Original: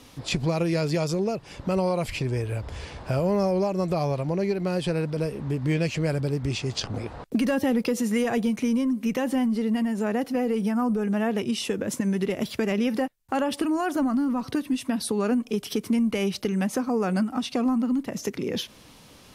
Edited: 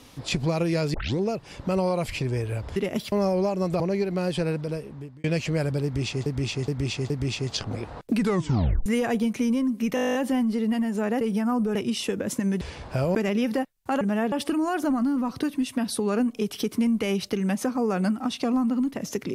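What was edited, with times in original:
0:00.94: tape start 0.25 s
0:02.76–0:03.30: swap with 0:12.22–0:12.58
0:03.98–0:04.29: remove
0:04.98–0:05.73: fade out
0:06.33–0:06.75: repeat, 4 plays
0:07.36: tape stop 0.73 s
0:09.18: stutter 0.02 s, 11 plays
0:10.24–0:10.51: remove
0:11.05–0:11.36: move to 0:13.44

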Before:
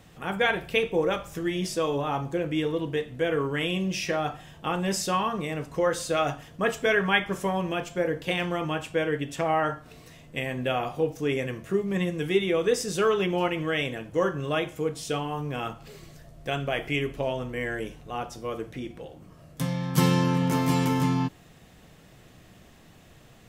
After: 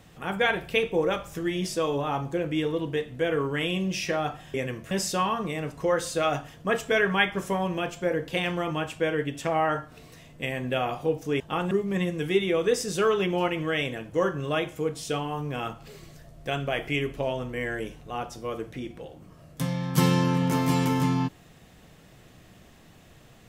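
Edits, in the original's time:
0:04.54–0:04.85: swap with 0:11.34–0:11.71

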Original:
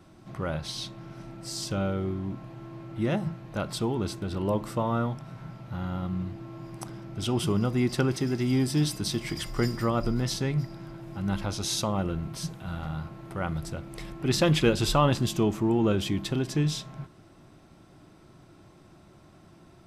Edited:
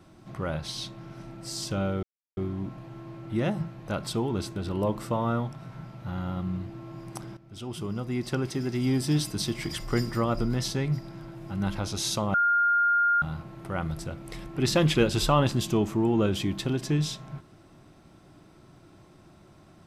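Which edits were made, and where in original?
0:02.03: splice in silence 0.34 s
0:07.03–0:08.74: fade in, from −14.5 dB
0:12.00–0:12.88: beep over 1,410 Hz −19.5 dBFS

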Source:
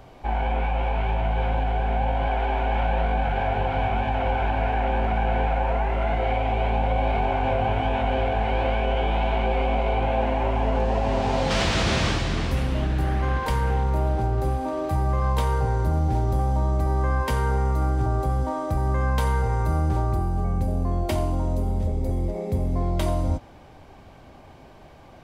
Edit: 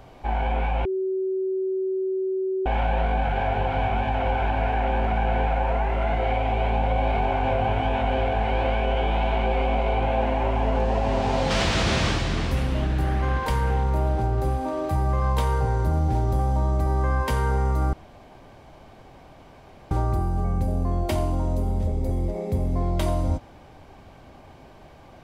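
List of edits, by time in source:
0:00.85–0:02.66: beep over 379 Hz −22.5 dBFS
0:17.93–0:19.91: fill with room tone

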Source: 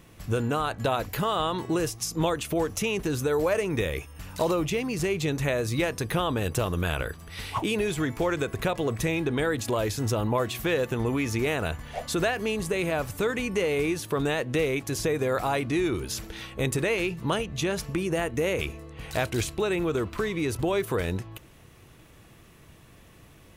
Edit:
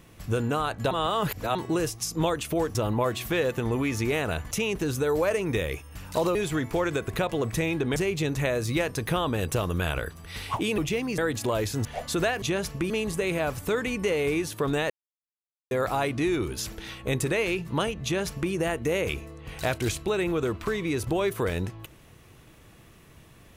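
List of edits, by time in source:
0:00.91–0:01.55: reverse
0:04.59–0:04.99: swap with 0:07.81–0:09.42
0:10.09–0:11.85: move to 0:02.75
0:14.42–0:15.23: silence
0:17.56–0:18.04: duplicate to 0:12.42

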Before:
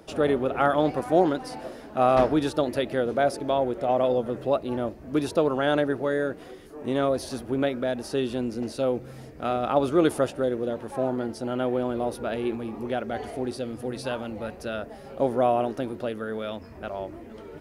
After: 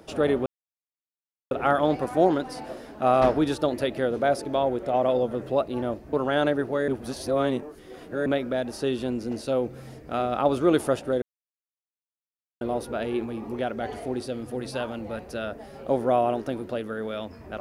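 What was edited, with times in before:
0:00.46: splice in silence 1.05 s
0:05.08–0:05.44: remove
0:06.19–0:07.57: reverse
0:10.53–0:11.92: silence

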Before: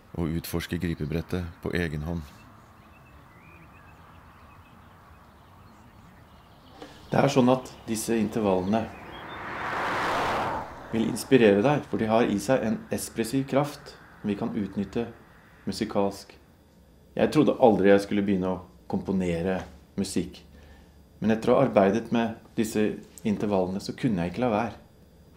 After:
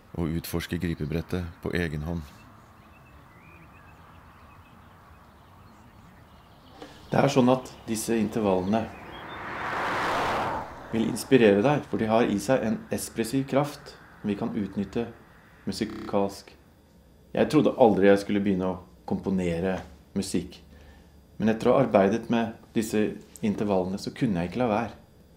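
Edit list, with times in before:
0:15.87: stutter 0.03 s, 7 plays

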